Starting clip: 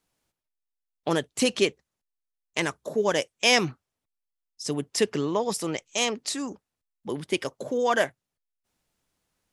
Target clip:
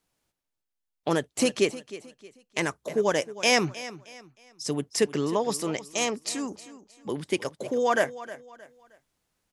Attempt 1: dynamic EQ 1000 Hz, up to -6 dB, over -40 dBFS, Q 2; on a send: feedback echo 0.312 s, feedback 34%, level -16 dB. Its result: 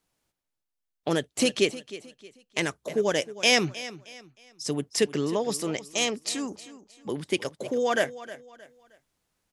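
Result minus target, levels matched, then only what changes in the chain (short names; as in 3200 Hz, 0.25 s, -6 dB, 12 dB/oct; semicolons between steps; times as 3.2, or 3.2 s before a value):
1000 Hz band -3.5 dB
change: dynamic EQ 3400 Hz, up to -6 dB, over -40 dBFS, Q 2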